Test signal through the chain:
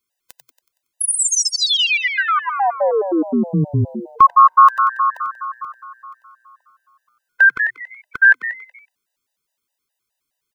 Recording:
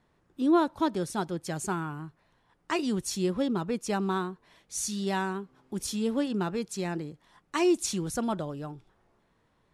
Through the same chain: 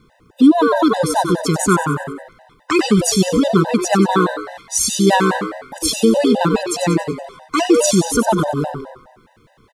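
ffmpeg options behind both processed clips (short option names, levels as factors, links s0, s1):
-filter_complex "[0:a]asplit=7[s0][s1][s2][s3][s4][s5][s6];[s1]adelay=93,afreqshift=120,volume=0.376[s7];[s2]adelay=186,afreqshift=240,volume=0.184[s8];[s3]adelay=279,afreqshift=360,volume=0.0902[s9];[s4]adelay=372,afreqshift=480,volume=0.0442[s10];[s5]adelay=465,afreqshift=600,volume=0.0216[s11];[s6]adelay=558,afreqshift=720,volume=0.0106[s12];[s0][s7][s8][s9][s10][s11][s12]amix=inputs=7:normalize=0,alimiter=level_in=9.44:limit=0.891:release=50:level=0:latency=1,afftfilt=real='re*gt(sin(2*PI*4.8*pts/sr)*(1-2*mod(floor(b*sr/1024/510),2)),0)':imag='im*gt(sin(2*PI*4.8*pts/sr)*(1-2*mod(floor(b*sr/1024/510),2)),0)':win_size=1024:overlap=0.75,volume=0.891"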